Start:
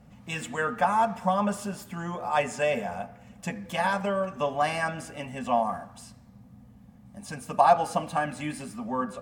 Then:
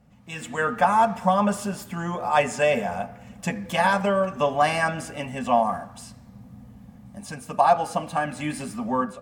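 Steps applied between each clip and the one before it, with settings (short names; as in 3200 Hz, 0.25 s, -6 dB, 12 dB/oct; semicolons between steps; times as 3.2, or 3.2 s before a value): AGC gain up to 11 dB; gain -4.5 dB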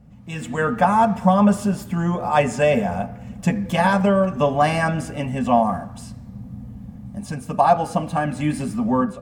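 low shelf 380 Hz +11.5 dB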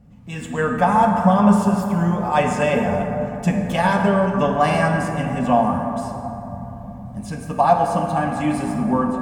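plate-style reverb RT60 3.5 s, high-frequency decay 0.35×, pre-delay 0 ms, DRR 2.5 dB; gain -1 dB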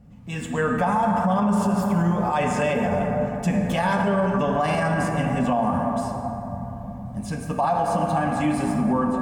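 limiter -13.5 dBFS, peak gain reduction 11 dB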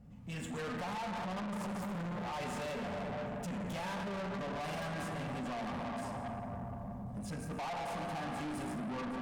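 soft clip -31 dBFS, distortion -6 dB; gain -6.5 dB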